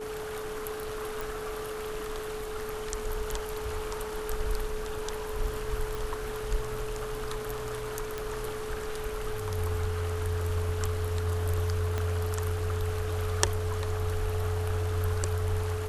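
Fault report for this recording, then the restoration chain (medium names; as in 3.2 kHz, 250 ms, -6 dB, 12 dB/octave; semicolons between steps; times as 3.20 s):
whine 430 Hz -35 dBFS
1.21 s: pop
5.95 s: pop
8.18 s: pop
11.98 s: pop -18 dBFS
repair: de-click; band-stop 430 Hz, Q 30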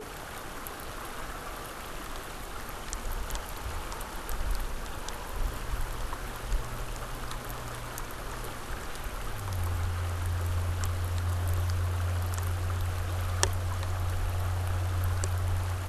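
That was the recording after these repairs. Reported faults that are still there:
11.98 s: pop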